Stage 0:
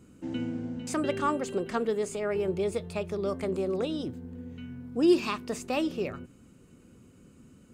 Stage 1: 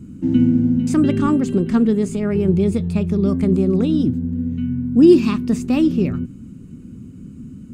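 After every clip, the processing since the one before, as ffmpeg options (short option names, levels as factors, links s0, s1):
-af "lowshelf=f=360:t=q:w=1.5:g=14,volume=1.5"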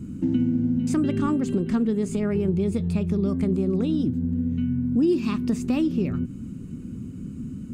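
-af "acompressor=threshold=0.0631:ratio=3,volume=1.19"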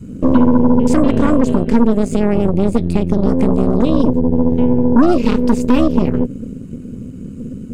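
-af "adynamicequalizer=threshold=0.0158:dfrequency=250:dqfactor=2.6:tfrequency=250:tqfactor=2.6:attack=5:release=100:ratio=0.375:range=3.5:mode=boostabove:tftype=bell,aeval=exprs='0.447*(cos(1*acos(clip(val(0)/0.447,-1,1)))-cos(1*PI/2))+0.1*(cos(6*acos(clip(val(0)/0.447,-1,1)))-cos(6*PI/2))':c=same,volume=1.68"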